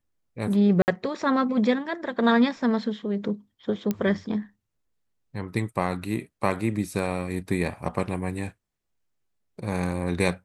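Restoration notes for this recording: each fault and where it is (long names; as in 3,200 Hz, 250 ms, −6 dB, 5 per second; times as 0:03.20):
0:00.82–0:00.88: drop-out 59 ms
0:03.91: click −13 dBFS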